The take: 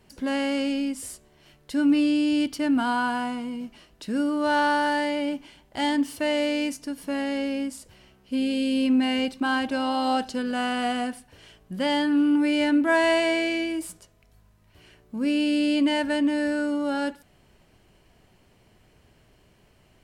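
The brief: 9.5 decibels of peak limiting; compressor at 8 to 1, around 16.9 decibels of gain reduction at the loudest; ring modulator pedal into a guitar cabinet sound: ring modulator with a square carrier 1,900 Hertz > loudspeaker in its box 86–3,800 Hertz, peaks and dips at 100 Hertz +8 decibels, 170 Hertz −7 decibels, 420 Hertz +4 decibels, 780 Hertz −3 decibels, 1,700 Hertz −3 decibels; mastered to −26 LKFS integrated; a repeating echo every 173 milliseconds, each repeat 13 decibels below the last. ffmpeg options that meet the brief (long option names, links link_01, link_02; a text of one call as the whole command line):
ffmpeg -i in.wav -af "acompressor=threshold=-36dB:ratio=8,alimiter=level_in=8.5dB:limit=-24dB:level=0:latency=1,volume=-8.5dB,aecho=1:1:173|346|519:0.224|0.0493|0.0108,aeval=exprs='val(0)*sgn(sin(2*PI*1900*n/s))':channel_layout=same,highpass=86,equalizer=frequency=100:width_type=q:width=4:gain=8,equalizer=frequency=170:width_type=q:width=4:gain=-7,equalizer=frequency=420:width_type=q:width=4:gain=4,equalizer=frequency=780:width_type=q:width=4:gain=-3,equalizer=frequency=1700:width_type=q:width=4:gain=-3,lowpass=frequency=3800:width=0.5412,lowpass=frequency=3800:width=1.3066,volume=14dB" out.wav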